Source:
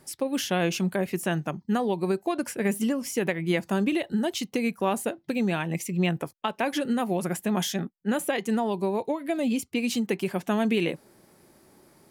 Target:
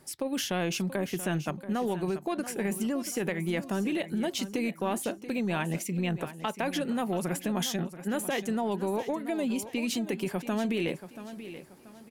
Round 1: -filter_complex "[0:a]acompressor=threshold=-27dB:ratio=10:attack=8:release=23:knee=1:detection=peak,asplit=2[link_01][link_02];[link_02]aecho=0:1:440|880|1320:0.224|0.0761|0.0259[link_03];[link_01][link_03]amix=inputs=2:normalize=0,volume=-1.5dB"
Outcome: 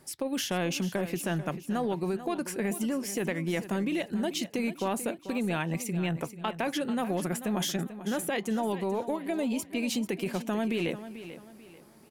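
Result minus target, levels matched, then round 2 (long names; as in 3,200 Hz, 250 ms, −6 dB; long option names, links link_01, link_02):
echo 242 ms early
-filter_complex "[0:a]acompressor=threshold=-27dB:ratio=10:attack=8:release=23:knee=1:detection=peak,asplit=2[link_01][link_02];[link_02]aecho=0:1:682|1364|2046:0.224|0.0761|0.0259[link_03];[link_01][link_03]amix=inputs=2:normalize=0,volume=-1.5dB"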